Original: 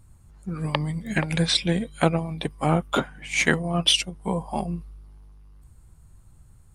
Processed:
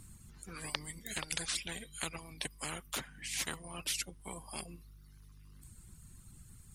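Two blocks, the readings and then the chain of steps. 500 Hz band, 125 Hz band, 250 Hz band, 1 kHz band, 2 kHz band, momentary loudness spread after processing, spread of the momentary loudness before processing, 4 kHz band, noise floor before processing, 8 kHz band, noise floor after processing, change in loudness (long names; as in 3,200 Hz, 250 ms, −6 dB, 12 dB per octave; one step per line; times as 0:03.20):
−22.0 dB, −23.0 dB, −23.0 dB, −18.0 dB, −14.5 dB, 20 LU, 11 LU, −15.0 dB, −53 dBFS, −5.5 dB, −57 dBFS, −15.0 dB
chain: reverb reduction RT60 1 s
guitar amp tone stack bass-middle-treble 6-0-2
every bin compressed towards the loudest bin 4 to 1
level +11 dB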